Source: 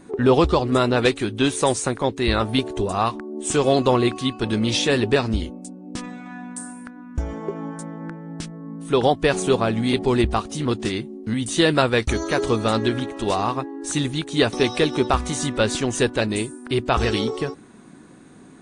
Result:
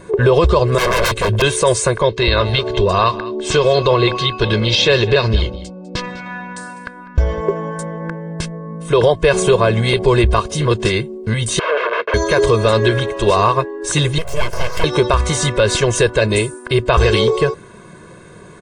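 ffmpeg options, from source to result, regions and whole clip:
-filter_complex "[0:a]asettb=1/sr,asplit=3[a][b][c];[a]atrim=end=0.784[d];[b]atrim=start=0.78:end=1.42,asetpts=PTS-STARTPTS,afade=t=in:d=0.004:c=qsin,afade=t=out:st=0.636:d=0.004:c=qsin,lowshelf=f=310:g=7.5,aeval=exprs='0.0891*(abs(mod(val(0)/0.0891+3,4)-2)-1)':c=same[e];[c]atrim=start=1.416[f];[d][e]acrossfade=d=0.004:c1=hsin:c2=qsin[g];[g][f]acrossfade=d=0.004:c1=qsin:c2=hsin,asettb=1/sr,asplit=3[h][i][j];[h]atrim=end=2.014[k];[i]atrim=start=2.01:end=7.41,asetpts=PTS-STARTPTS,afade=t=in:d=0.004:c=qsin,afade=t=out:st=5.396:d=0.004:c=qsin,lowpass=f=4.4k:t=q:w=1.8,acompressor=threshold=-21dB:ratio=2:attack=3.2:release=140:knee=1:detection=peak,aecho=1:1:200:0.141,atrim=end_sample=238140[l];[j]atrim=start=7.406[m];[k][l]acrossfade=d=0.004:c1=hsin:c2=qsin[n];[n][m]acrossfade=d=0.004:c1=qsin:c2=hsin,asettb=1/sr,asplit=3[o][p][q];[o]atrim=end=11.594[r];[p]atrim=start=11.59:end=12.14,asetpts=PTS-STARTPTS,afade=t=in:d=0.004:c=qsin,afade=t=out:st=0.546:d=0.004:c=qsin,aeval=exprs='(mod(9.44*val(0)+1,2)-1)/9.44':c=same,highpass=f=390:w=0.5412,highpass=f=390:w=1.3066,equalizer=f=480:t=q:w=4:g=5,equalizer=f=820:t=q:w=4:g=-7,equalizer=f=1.3k:t=q:w=4:g=3,equalizer=f=2k:t=q:w=4:g=-6,lowpass=f=2.4k:w=0.5412,lowpass=f=2.4k:w=1.3066[s];[q]atrim=start=12.136[t];[r][s]acrossfade=d=0.004:c1=hsin:c2=qsin[u];[u][t]acrossfade=d=0.004:c1=qsin:c2=hsin,asettb=1/sr,asplit=3[v][w][x];[v]atrim=end=14.184[y];[w]atrim=start=14.18:end=14.84,asetpts=PTS-STARTPTS,afade=t=in:d=0.004:c=qsin,afade=t=out:st=0.656:d=0.004:c=qsin,asuperstop=centerf=3700:order=12:qfactor=2.7,aeval=exprs='abs(val(0))':c=same,acompressor=threshold=-29dB:ratio=2:attack=3.2:release=140:knee=1:detection=peak[z];[x]atrim=start=14.836[aa];[y][z]acrossfade=d=0.004:c1=hsin:c2=qsin[ab];[ab][aa]acrossfade=d=0.004:c1=qsin:c2=hsin,bass=f=250:g=0,treble=f=4k:g=-4,aecho=1:1:1.9:0.98,alimiter=level_in=10.5dB:limit=-1dB:release=50:level=0:latency=1,volume=-2.5dB"

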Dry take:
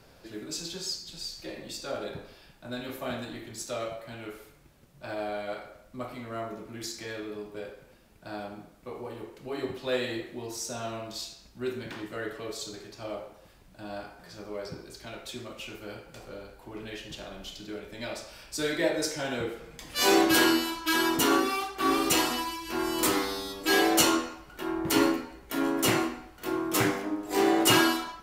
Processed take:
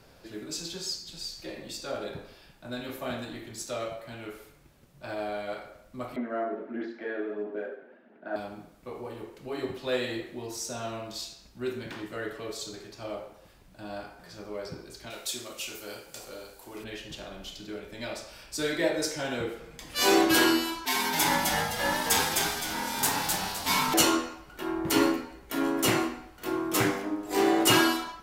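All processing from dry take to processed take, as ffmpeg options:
-filter_complex "[0:a]asettb=1/sr,asplit=3[a][b][c];[a]atrim=end=6.164[d];[b]atrim=start=6.16:end=8.36,asetpts=PTS-STARTPTS,afade=t=in:d=0.004:c=qsin,afade=t=out:st=2.196:d=0.004:c=qsin,highpass=f=230:w=0.5412,highpass=f=230:w=1.3066,equalizer=f=240:t=q:w=4:g=9,equalizer=f=380:t=q:w=4:g=6,equalizer=f=640:t=q:w=4:g=8,equalizer=f=1.1k:t=q:w=4:g=-4,equalizer=f=1.6k:t=q:w=4:g=7,equalizer=f=2.4k:t=q:w=4:g=-5,lowpass=f=2.5k:w=0.5412,lowpass=f=2.5k:w=1.3066,aphaser=in_gain=1:out_gain=1:delay=2.8:decay=0.31:speed=1.5:type=sinusoidal[e];[c]atrim=start=8.356[f];[d][e]acrossfade=d=0.004:c1=hsin:c2=qsin[g];[g][f]acrossfade=d=0.004:c1=qsin:c2=hsin,asettb=1/sr,asplit=3[h][i][j];[h]atrim=end=15.104[k];[i]atrim=start=15.1:end=16.84,asetpts=PTS-STARTPTS,afade=t=in:d=0.004:c=qsin,afade=t=out:st=1.736:d=0.004:c=qsin,bass=f=250:g=-8,treble=f=4k:g=13,asplit=2[l][m];[m]adelay=33,volume=-12dB[n];[l][n]amix=inputs=2:normalize=0,atrim=end_sample=76734[o];[j]atrim=start=16.836[p];[k][o]acrossfade=d=0.004:c1=hsin:c2=qsin[q];[q][p]acrossfade=d=0.004:c1=qsin:c2=hsin,asettb=1/sr,asplit=3[r][s][t];[r]atrim=end=20.854[u];[s]atrim=start=20.85:end=23.94,asetpts=PTS-STARTPTS,afade=t=in:d=0.004:c=qsin,afade=t=out:st=3.086:d=0.004:c=qsin,aeval=exprs='val(0)*sin(2*PI*580*n/s)':c=same,bass=f=250:g=-9,treble=f=4k:g=5,asplit=6[v][w][x][y][z][aa];[w]adelay=258,afreqshift=-95,volume=-3dB[ab];[x]adelay=516,afreqshift=-190,volume=-12.1dB[ac];[y]adelay=774,afreqshift=-285,volume=-21.2dB[ad];[z]adelay=1032,afreqshift=-380,volume=-30.4dB[ae];[aa]adelay=1290,afreqshift=-475,volume=-39.5dB[af];[v][ab][ac][ad][ae][af]amix=inputs=6:normalize=0,atrim=end_sample=136269[ag];[t]atrim=start=23.936[ah];[u][ag]acrossfade=d=0.004:c1=hsin:c2=qsin[ai];[ai][ah]acrossfade=d=0.004:c1=qsin:c2=hsin"

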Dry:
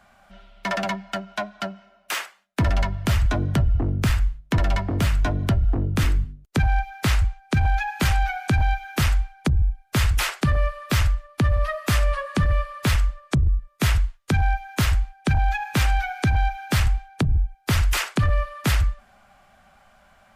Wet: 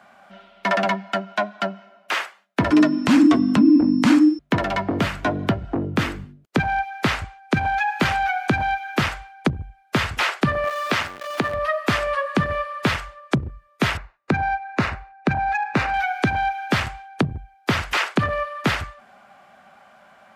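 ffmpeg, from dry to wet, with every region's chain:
-filter_complex "[0:a]asettb=1/sr,asplit=3[a][b][c];[a]atrim=end=2.714[d];[b]atrim=start=2.71:end=4.39,asetpts=PTS-STARTPTS,afade=t=in:d=0.004:c=qsin,afade=t=out:st=1.676:d=0.004:c=qsin,equalizer=f=8.8k:w=0.8:g=11,aeval=exprs='val(0)+0.00562*sin(2*PI*5700*n/s)':c=same,afreqshift=-350[e];[c]atrim=start=4.386[f];[d][e]acrossfade=d=0.004:c1=hsin:c2=qsin[g];[g][f]acrossfade=d=0.004:c1=qsin:c2=hsin,asettb=1/sr,asplit=3[h][i][j];[h]atrim=end=10.644[k];[i]atrim=start=10.64:end=11.54,asetpts=PTS-STARTPTS,afade=t=in:d=0.004:c=qsin,afade=t=out:st=0.896:d=0.004:c=qsin,aeval=exprs='val(0)+0.5*0.0335*sgn(val(0))':c=same,highpass=f=360:p=1[l];[j]atrim=start=11.536[m];[k][l]acrossfade=d=0.004:c1=hsin:c2=qsin[n];[n][m]acrossfade=d=0.004:c1=qsin:c2=hsin,asettb=1/sr,asplit=3[o][p][q];[o]atrim=end=13.974[r];[p]atrim=start=13.97:end=15.94,asetpts=PTS-STARTPTS,afade=t=in:d=0.004:c=qsin,afade=t=out:st=1.966:d=0.004:c=qsin,bandreject=f=3.2k:w=5,adynamicsmooth=sensitivity=1.5:basefreq=2.6k[s];[q]atrim=start=15.936[t];[r][s]acrossfade=d=0.004:c1=hsin:c2=qsin[u];[u][t]acrossfade=d=0.004:c1=qsin:c2=hsin,highpass=210,acrossover=split=5800[v][w];[w]acompressor=threshold=-42dB:ratio=4:attack=1:release=60[x];[v][x]amix=inputs=2:normalize=0,highshelf=f=4.1k:g=-9.5,volume=6.5dB"

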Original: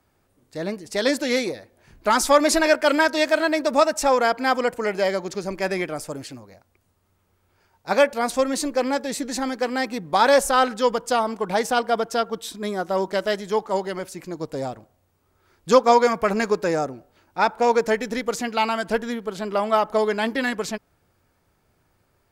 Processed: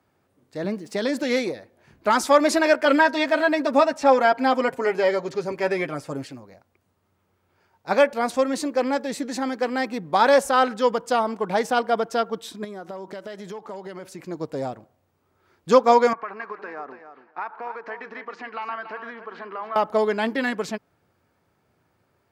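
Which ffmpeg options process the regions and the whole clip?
-filter_complex "[0:a]asettb=1/sr,asplit=3[a][b][c];[a]atrim=end=0.644[d];[b]atrim=start=0.64:end=1.23,asetpts=PTS-STARTPTS,afade=t=in:d=0.004:c=qsin,afade=t=out:st=0.586:d=0.004:c=qsin,highpass=f=180:t=q:w=1.6,acompressor=threshold=-21dB:ratio=2.5:attack=3.2:release=140:knee=1:detection=peak,aeval=exprs='val(0)*gte(abs(val(0)),0.00282)':c=same[e];[c]atrim=start=1.226[f];[d][e]acrossfade=d=0.004:c1=hsin:c2=qsin[g];[g][f]acrossfade=d=0.004:c1=qsin:c2=hsin,asettb=1/sr,asplit=3[h][i][j];[h]atrim=end=2.854[k];[i]atrim=start=2.85:end=6.26,asetpts=PTS-STARTPTS,afade=t=in:d=0.004:c=qsin,afade=t=out:st=3.406:d=0.004:c=qsin,acrossover=split=4800[l][m];[m]acompressor=threshold=-42dB:ratio=4:attack=1:release=60[n];[l][n]amix=inputs=2:normalize=0,aecho=1:1:7.4:0.65,atrim=end_sample=150381[o];[j]atrim=start=6.256[p];[k][o]acrossfade=d=0.004:c1=hsin:c2=qsin[q];[q][p]acrossfade=d=0.004:c1=qsin:c2=hsin,asettb=1/sr,asplit=3[r][s][t];[r]atrim=end=12.644[u];[s]atrim=start=12.64:end=14.23,asetpts=PTS-STARTPTS,afade=t=in:d=0.004:c=qsin,afade=t=out:st=1.586:d=0.004:c=qsin,asoftclip=type=hard:threshold=-14.5dB,acompressor=threshold=-31dB:ratio=16:attack=3.2:release=140:knee=1:detection=peak[v];[t]atrim=start=14.226[w];[u][v]acrossfade=d=0.004:c1=hsin:c2=qsin[x];[x][w]acrossfade=d=0.004:c1=qsin:c2=hsin,asettb=1/sr,asplit=3[y][z][aa];[y]atrim=end=16.134[ab];[z]atrim=start=16.13:end=19.76,asetpts=PTS-STARTPTS,afade=t=in:d=0.004:c=qsin,afade=t=out:st=3.626:d=0.004:c=qsin,acompressor=threshold=-27dB:ratio=12:attack=3.2:release=140:knee=1:detection=peak,highpass=460,equalizer=f=550:t=q:w=4:g=-9,equalizer=f=1.1k:t=q:w=4:g=8,equalizer=f=1.7k:t=q:w=4:g=5,equalizer=f=3.5k:t=q:w=4:g=-9,lowpass=f=3.7k:w=0.5412,lowpass=f=3.7k:w=1.3066,aecho=1:1:283|566:0.316|0.0506,atrim=end_sample=160083[ac];[aa]atrim=start=19.756[ad];[ab][ac]acrossfade=d=0.004:c1=hsin:c2=qsin[ae];[ae][ad]acrossfade=d=0.004:c1=qsin:c2=hsin,highpass=100,equalizer=f=12k:t=o:w=2.2:g=-7.5"

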